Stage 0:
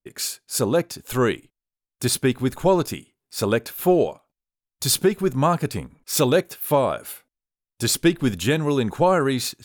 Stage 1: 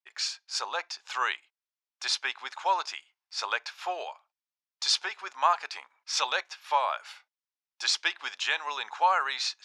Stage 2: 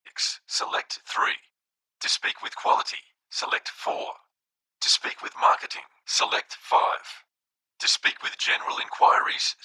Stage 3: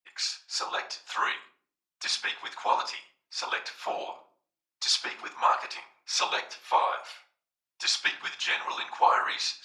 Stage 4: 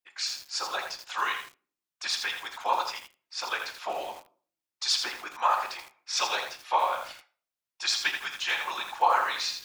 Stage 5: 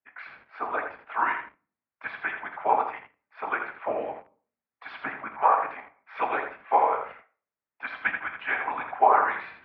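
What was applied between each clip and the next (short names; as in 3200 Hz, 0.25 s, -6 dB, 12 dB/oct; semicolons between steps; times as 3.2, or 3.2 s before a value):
elliptic band-pass 850–5700 Hz, stop band 70 dB
whisperiser; gain +5 dB
shoebox room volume 450 m³, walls furnished, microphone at 0.93 m; gain -5 dB
lo-fi delay 82 ms, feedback 35%, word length 7-bit, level -6 dB; gain -1 dB
mistuned SSB -91 Hz 160–2200 Hz; gain +4 dB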